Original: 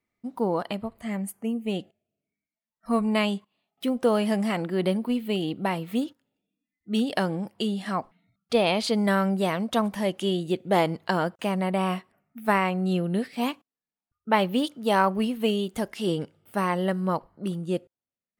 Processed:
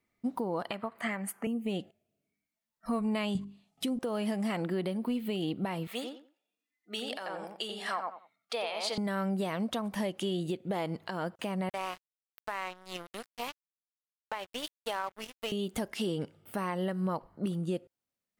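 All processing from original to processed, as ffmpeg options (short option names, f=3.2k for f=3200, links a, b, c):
-filter_complex "[0:a]asettb=1/sr,asplit=3[a][b][c];[a]atrim=end=0.714[d];[b]atrim=start=0.71:end=1.47,asetpts=PTS-STARTPTS,afade=t=in:d=0.004:c=qsin,afade=t=out:st=0.756:d=0.004:c=qsin,highpass=190,equalizer=f=1.5k:t=o:w=1.9:g=14[e];[c]atrim=start=1.466[f];[d][e]acrossfade=d=0.004:c1=hsin:c2=qsin[g];[g][f]acrossfade=d=0.004:c1=qsin:c2=hsin,asettb=1/sr,asplit=3[h][i][j];[h]atrim=end=3.354[k];[i]atrim=start=3.35:end=3.99,asetpts=PTS-STARTPTS,afade=t=in:d=0.004:c=qsin,afade=t=out:st=0.636:d=0.004:c=qsin,lowpass=9.2k,bass=f=250:g=13,treble=f=4k:g=11,bandreject=f=50:t=h:w=6,bandreject=f=100:t=h:w=6,bandreject=f=150:t=h:w=6,bandreject=f=200:t=h:w=6,bandreject=f=250:t=h:w=6,bandreject=f=300:t=h:w=6,bandreject=f=350:t=h:w=6,bandreject=f=400:t=h:w=6[l];[j]atrim=start=3.986[m];[k][l]acrossfade=d=0.004:c1=hsin:c2=qsin[n];[n][m]acrossfade=d=0.004:c1=qsin:c2=hsin,asettb=1/sr,asplit=3[o][p][q];[o]atrim=end=5.874[r];[p]atrim=start=5.87:end=8.98,asetpts=PTS-STARTPTS,afade=t=in:d=0.004:c=qsin,afade=t=out:st=3.106:d=0.004:c=qsin,highpass=690,highshelf=f=11k:g=-4.5,asplit=2[s][t];[t]adelay=89,lowpass=f=1.8k:p=1,volume=-4dB,asplit=2[u][v];[v]adelay=89,lowpass=f=1.8k:p=1,volume=0.23,asplit=2[w][x];[x]adelay=89,lowpass=f=1.8k:p=1,volume=0.23[y];[s][u][w][y]amix=inputs=4:normalize=0,atrim=end_sample=137151[z];[q]atrim=start=8.976[aa];[r][z]acrossfade=d=0.004:c1=hsin:c2=qsin[ab];[ab][aa]acrossfade=d=0.004:c1=qsin:c2=hsin,asettb=1/sr,asplit=3[ac][ad][ae];[ac]atrim=end=11.694[af];[ad]atrim=start=11.69:end=15.52,asetpts=PTS-STARTPTS,afade=t=in:d=0.004:c=qsin,afade=t=out:st=3.826:d=0.004:c=qsin,highpass=620,aeval=exprs='sgn(val(0))*max(abs(val(0))-0.0158,0)':c=same[ag];[ae]atrim=start=15.516[ah];[af][ag]acrossfade=d=0.004:c1=hsin:c2=qsin[ai];[ai][ah]acrossfade=d=0.004:c1=qsin:c2=hsin,acompressor=threshold=-27dB:ratio=6,alimiter=level_in=1.5dB:limit=-24dB:level=0:latency=1:release=320,volume=-1.5dB,volume=2.5dB"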